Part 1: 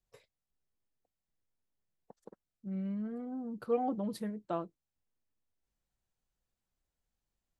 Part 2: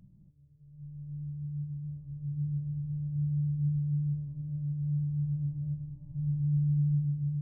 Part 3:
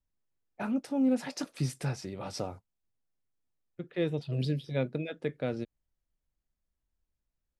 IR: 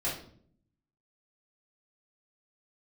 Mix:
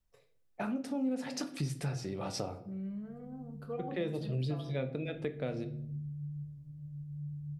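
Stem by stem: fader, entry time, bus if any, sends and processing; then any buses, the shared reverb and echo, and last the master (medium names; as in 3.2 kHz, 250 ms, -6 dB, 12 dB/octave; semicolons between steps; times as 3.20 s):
-8.5 dB, 0.00 s, send -8.5 dB, echo send -12 dB, none
-10.5 dB, 2.30 s, no send, no echo send, none
+1.5 dB, 0.00 s, send -12.5 dB, no echo send, none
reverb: on, RT60 0.55 s, pre-delay 3 ms
echo: delay 83 ms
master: compression 2.5:1, threshold -35 dBFS, peak gain reduction 11 dB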